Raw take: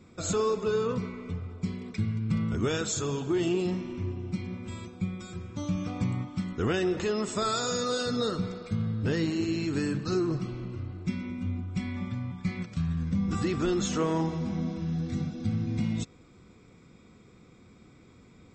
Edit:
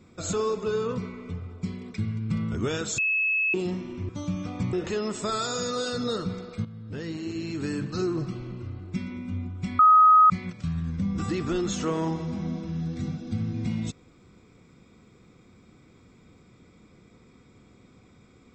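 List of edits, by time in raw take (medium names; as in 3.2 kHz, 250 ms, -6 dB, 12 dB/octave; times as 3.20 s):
2.98–3.54 s: bleep 2.59 kHz -21.5 dBFS
4.09–5.50 s: delete
6.14–6.86 s: delete
8.78–10.01 s: fade in, from -13.5 dB
11.92–12.43 s: bleep 1.26 kHz -12 dBFS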